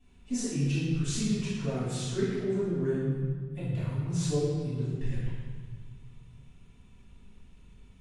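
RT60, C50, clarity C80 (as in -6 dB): 1.5 s, -2.5 dB, 0.5 dB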